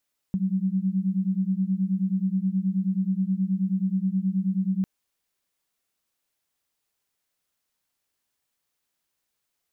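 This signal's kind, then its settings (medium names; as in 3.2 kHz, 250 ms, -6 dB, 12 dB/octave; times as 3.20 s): beating tones 185 Hz, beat 9.4 Hz, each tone -25 dBFS 4.50 s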